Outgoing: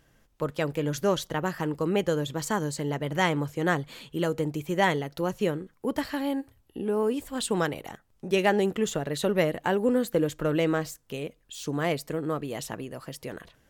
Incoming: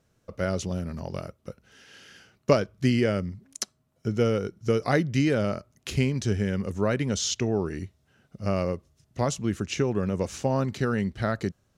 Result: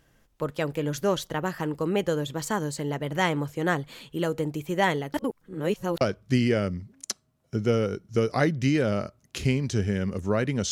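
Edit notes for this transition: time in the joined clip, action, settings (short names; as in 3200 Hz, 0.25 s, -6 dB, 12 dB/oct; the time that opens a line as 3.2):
outgoing
5.14–6.01 reverse
6.01 switch to incoming from 2.53 s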